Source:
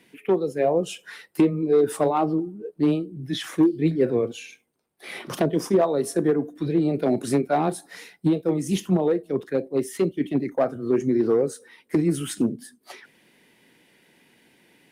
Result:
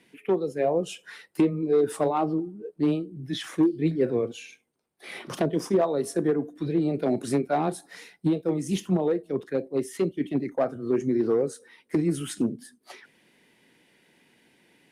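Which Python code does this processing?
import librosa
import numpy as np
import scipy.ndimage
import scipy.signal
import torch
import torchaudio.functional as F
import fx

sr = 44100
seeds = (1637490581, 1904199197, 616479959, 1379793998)

y = scipy.signal.sosfilt(scipy.signal.butter(2, 12000.0, 'lowpass', fs=sr, output='sos'), x)
y = F.gain(torch.from_numpy(y), -3.0).numpy()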